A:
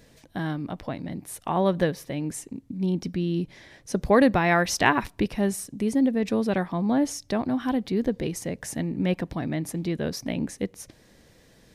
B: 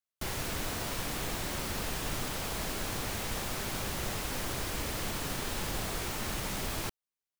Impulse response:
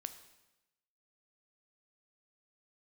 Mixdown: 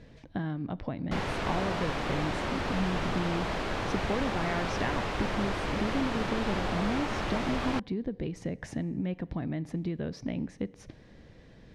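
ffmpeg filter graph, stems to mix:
-filter_complex "[0:a]lowshelf=f=250:g=7,acompressor=threshold=0.0355:ratio=8,volume=0.668,asplit=2[s0][s1];[s1]volume=0.596[s2];[1:a]equalizer=f=720:t=o:w=2.8:g=5,adelay=900,volume=1.26[s3];[2:a]atrim=start_sample=2205[s4];[s2][s4]afir=irnorm=-1:irlink=0[s5];[s0][s3][s5]amix=inputs=3:normalize=0,lowpass=3500"

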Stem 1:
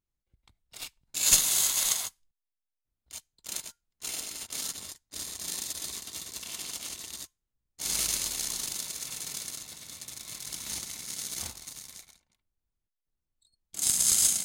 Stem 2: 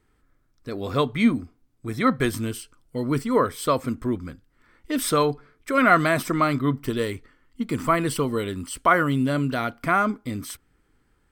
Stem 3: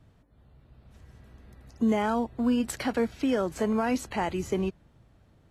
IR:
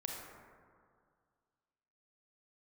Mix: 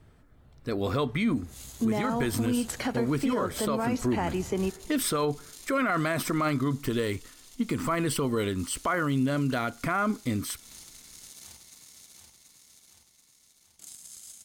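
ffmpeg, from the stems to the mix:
-filter_complex "[0:a]acompressor=threshold=0.0251:ratio=8,adelay=50,volume=0.282,asplit=2[s0][s1];[s1]volume=0.562[s2];[1:a]alimiter=limit=0.158:level=0:latency=1,volume=1.19,asplit=2[s3][s4];[2:a]volume=1,asplit=2[s5][s6];[s6]volume=0.141[s7];[s4]apad=whole_len=639421[s8];[s0][s8]sidechaincompress=threshold=0.00794:ratio=8:attack=16:release=143[s9];[3:a]atrim=start_sample=2205[s10];[s7][s10]afir=irnorm=-1:irlink=0[s11];[s2]aecho=0:1:732|1464|2196|2928|3660|4392|5124|5856:1|0.56|0.314|0.176|0.0983|0.0551|0.0308|0.0173[s12];[s9][s3][s5][s11][s12]amix=inputs=5:normalize=0,alimiter=limit=0.119:level=0:latency=1:release=120"

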